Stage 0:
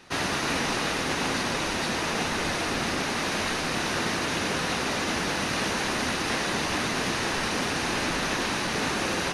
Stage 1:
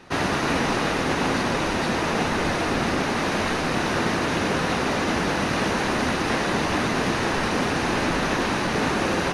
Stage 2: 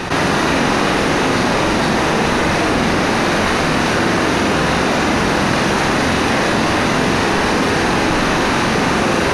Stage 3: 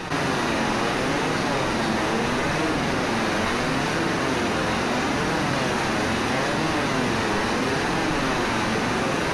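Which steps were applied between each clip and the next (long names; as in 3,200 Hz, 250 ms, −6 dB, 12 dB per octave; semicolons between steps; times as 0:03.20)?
high-shelf EQ 2,200 Hz −9.5 dB; level +6.5 dB
flutter between parallel walls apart 7.7 metres, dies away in 0.48 s; envelope flattener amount 70%; level +5 dB
flanger 0.75 Hz, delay 6.1 ms, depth 3.5 ms, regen +54%; level −4 dB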